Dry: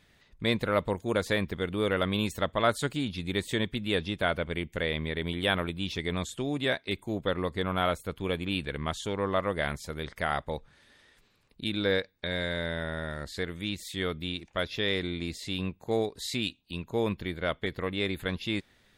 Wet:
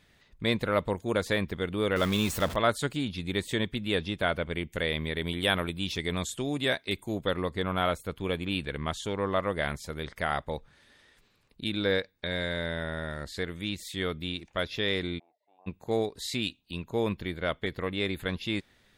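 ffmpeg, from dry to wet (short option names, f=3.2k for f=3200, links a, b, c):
-filter_complex "[0:a]asettb=1/sr,asplit=3[a][b][c];[a]atrim=end=1.964[d];[b]atrim=start=1.96:end=2.56,asetpts=PTS-STARTPTS,afade=t=in:d=0.004:c=qsin,afade=t=out:st=0.596:d=0.004:c=qsin,aeval=exprs='val(0)+0.5*0.0251*sgn(val(0))':c=same[e];[c]atrim=start=2.556[f];[d][e]acrossfade=d=0.004:c1=hsin:c2=qsin[g];[g][f]acrossfade=d=0.004:c1=qsin:c2=hsin,asettb=1/sr,asplit=3[h][i][j];[h]atrim=end=4.714[k];[i]atrim=start=4.71:end=7.41,asetpts=PTS-STARTPTS,afade=t=in:d=0.004:c=qsin,afade=t=out:st=2.696:d=0.004:c=qsin,highshelf=f=5.4k:g=7.5[l];[j]atrim=start=7.406[m];[k][l]acrossfade=d=0.004:c1=hsin:c2=qsin[n];[n][m]acrossfade=d=0.004:c1=qsin:c2=hsin,asplit=3[o][p][q];[o]afade=t=out:st=15.18:d=0.02[r];[p]asuperpass=centerf=770:order=4:qfactor=4,afade=t=in:st=15.18:d=0.02,afade=t=out:st=15.66:d=0.02[s];[q]afade=t=in:st=15.66:d=0.02[t];[r][s][t]amix=inputs=3:normalize=0"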